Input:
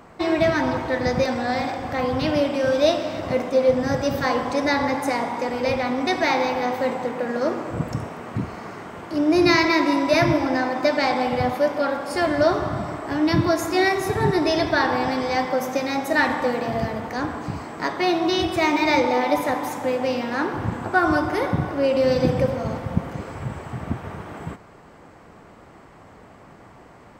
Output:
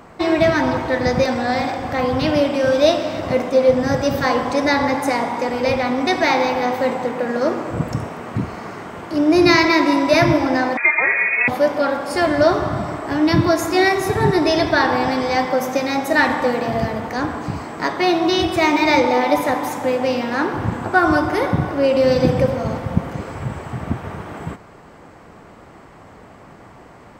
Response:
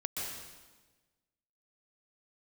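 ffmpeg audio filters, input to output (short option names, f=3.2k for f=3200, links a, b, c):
-filter_complex "[0:a]asettb=1/sr,asplit=3[a][b][c];[a]atrim=end=10.774[d];[b]atrim=start=10.77:end=11.48,asetpts=PTS-STARTPTS,afade=t=in:d=0.004:c=qsin,afade=t=out:st=0.706:d=0.004:c=qsin,lowpass=f=2.3k:t=q:w=0.5098,lowpass=f=2.3k:t=q:w=0.6013,lowpass=f=2.3k:t=q:w=0.9,lowpass=f=2.3k:t=q:w=2.563,afreqshift=-2700[e];[c]atrim=start=11.476[f];[d][e]acrossfade=d=0.004:c1=hsin:c2=qsin[g];[g][f]acrossfade=d=0.004:c1=qsin:c2=hsin,volume=4dB"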